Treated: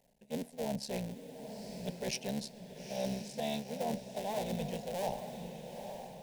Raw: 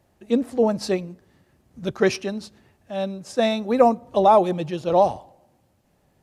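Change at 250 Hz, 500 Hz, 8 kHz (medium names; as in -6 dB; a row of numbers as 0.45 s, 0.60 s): -14.5 dB, -17.5 dB, -4.5 dB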